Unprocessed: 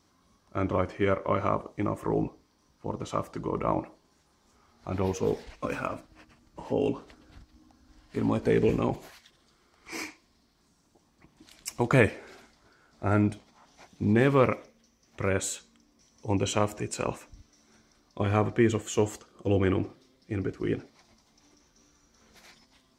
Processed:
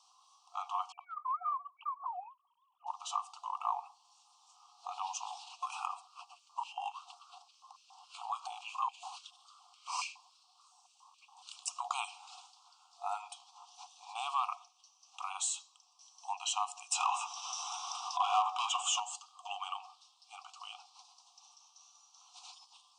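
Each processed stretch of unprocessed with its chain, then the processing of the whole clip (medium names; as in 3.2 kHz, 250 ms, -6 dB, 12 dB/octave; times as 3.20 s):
0.92–2.87 s: formants replaced by sine waves + tilt EQ -2 dB/octave + compression 5:1, threshold -25 dBFS
5.93–11.89 s: compression 2.5:1, threshold -29 dBFS + step-sequenced high-pass 7.1 Hz 530–2400 Hz
16.92–19.00 s: overdrive pedal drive 25 dB, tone 2 kHz, clips at -10 dBFS + band-stop 4.3 kHz, Q 5.1 + upward compressor, threshold -25 dBFS
whole clip: elliptic band-stop 1.2–2.7 kHz, stop band 60 dB; FFT band-pass 700–9500 Hz; compression 1.5:1, threshold -47 dBFS; trim +5 dB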